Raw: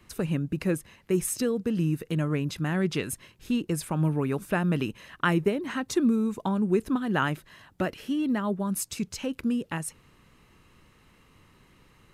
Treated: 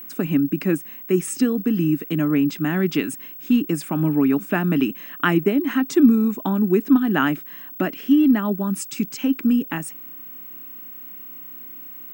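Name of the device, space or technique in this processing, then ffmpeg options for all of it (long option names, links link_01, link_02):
old television with a line whistle: -af "highpass=frequency=170:width=0.5412,highpass=frequency=170:width=1.3066,equalizer=frequency=280:width_type=q:width=4:gain=9,equalizer=frequency=510:width_type=q:width=4:gain=-9,equalizer=frequency=960:width_type=q:width=4:gain=-4,equalizer=frequency=4100:width_type=q:width=4:gain=-7,equalizer=frequency=6100:width_type=q:width=4:gain=-4,lowpass=frequency=8400:width=0.5412,lowpass=frequency=8400:width=1.3066,aeval=exprs='val(0)+0.00891*sin(2*PI*15734*n/s)':channel_layout=same,volume=6dB"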